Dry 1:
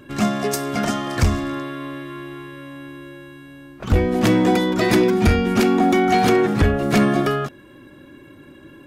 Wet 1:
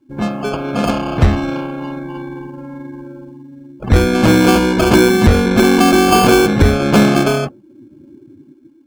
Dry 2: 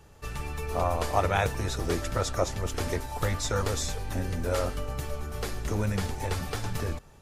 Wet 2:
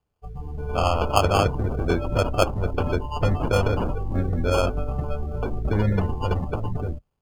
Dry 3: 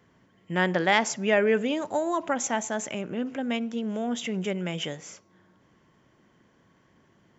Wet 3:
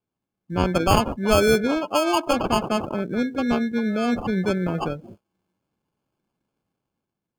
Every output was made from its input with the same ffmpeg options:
-af "dynaudnorm=f=130:g=9:m=7dB,acrusher=samples=23:mix=1:aa=0.000001,afftdn=nr=24:nf=-29"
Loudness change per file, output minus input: +5.5, +6.0, +4.5 LU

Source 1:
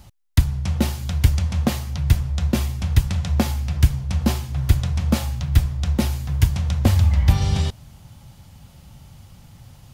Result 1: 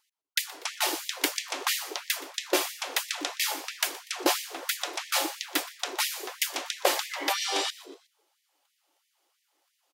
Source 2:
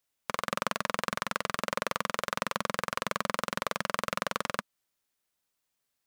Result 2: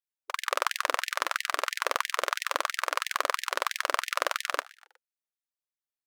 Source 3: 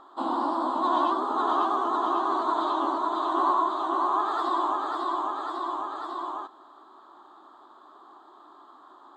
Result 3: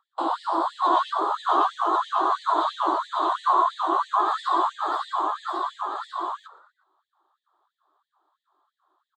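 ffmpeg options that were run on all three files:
-filter_complex "[0:a]agate=range=-22dB:threshold=-38dB:ratio=16:detection=peak,asplit=4[a][b][c][d];[b]adelay=121,afreqshift=100,volume=-20dB[e];[c]adelay=242,afreqshift=200,volume=-26.7dB[f];[d]adelay=363,afreqshift=300,volume=-33.5dB[g];[a][e][f][g]amix=inputs=4:normalize=0,afftfilt=real='re*gte(b*sr/1024,260*pow(1800/260,0.5+0.5*sin(2*PI*3*pts/sr)))':imag='im*gte(b*sr/1024,260*pow(1800/260,0.5+0.5*sin(2*PI*3*pts/sr)))':win_size=1024:overlap=0.75,volume=4.5dB"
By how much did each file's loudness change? -7.5, +3.0, +2.5 LU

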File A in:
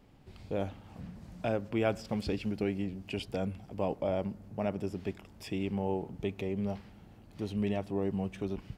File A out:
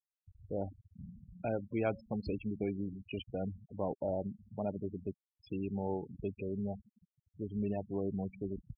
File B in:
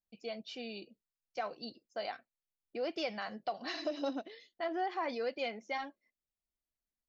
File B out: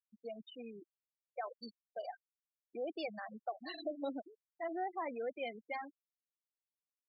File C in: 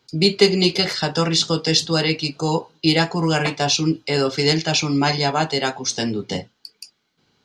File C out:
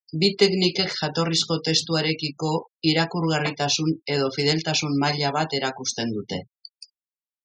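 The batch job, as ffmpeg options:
-af "afftfilt=real='re*gte(hypot(re,im),0.0251)':imag='im*gte(hypot(re,im),0.0251)':win_size=1024:overlap=0.75,volume=-3.5dB"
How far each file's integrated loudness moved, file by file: -3.5, -4.5, -3.5 LU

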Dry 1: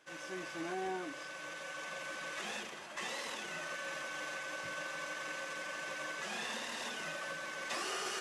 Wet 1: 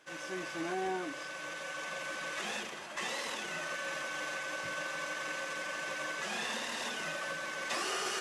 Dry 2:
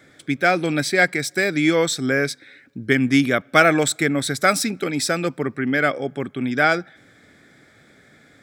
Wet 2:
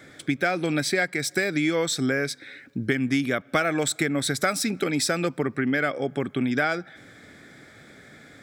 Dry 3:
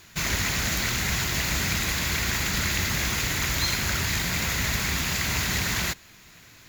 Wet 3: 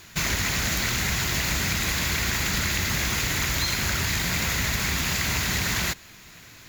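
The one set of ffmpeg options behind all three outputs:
-af "acompressor=threshold=-25dB:ratio=5,volume=3.5dB"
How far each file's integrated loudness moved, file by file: +3.5, -5.5, +0.5 LU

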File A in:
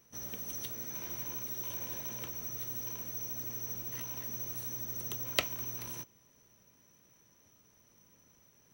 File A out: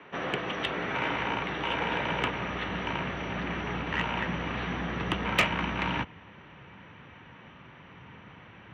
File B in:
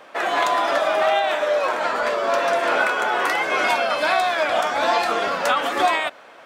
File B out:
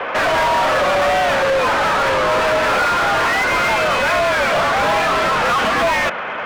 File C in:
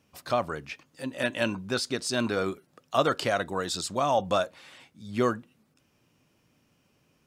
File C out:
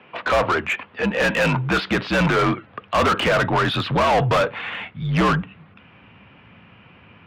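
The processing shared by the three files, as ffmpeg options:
-filter_complex "[0:a]asubboost=boost=8.5:cutoff=160,highpass=f=150:t=q:w=0.5412,highpass=f=150:t=q:w=1.307,lowpass=f=3.2k:t=q:w=0.5176,lowpass=f=3.2k:t=q:w=0.7071,lowpass=f=3.2k:t=q:w=1.932,afreqshift=-58,asplit=2[a][b];[b]highpass=f=720:p=1,volume=34dB,asoftclip=type=tanh:threshold=-8dB[c];[a][c]amix=inputs=2:normalize=0,lowpass=f=2.4k:p=1,volume=-6dB,volume=-1.5dB"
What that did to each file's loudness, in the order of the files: +6.0, +4.5, +8.5 LU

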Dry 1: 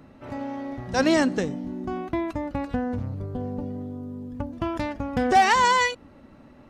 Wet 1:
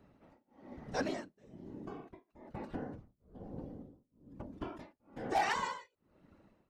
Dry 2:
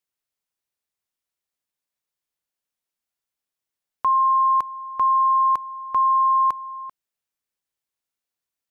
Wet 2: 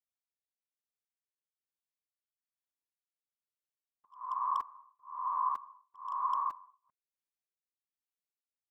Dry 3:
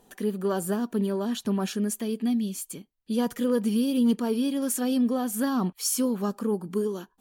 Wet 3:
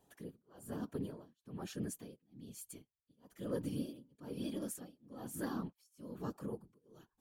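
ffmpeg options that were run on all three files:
-af "afftfilt=real='hypot(re,im)*cos(2*PI*random(0))':imag='hypot(re,im)*sin(2*PI*random(1))':win_size=512:overlap=0.75,aeval=exprs='0.178*(abs(mod(val(0)/0.178+3,4)-2)-1)':c=same,tremolo=f=1.1:d=0.99,volume=-7dB"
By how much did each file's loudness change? -15.0, -15.5, -17.5 LU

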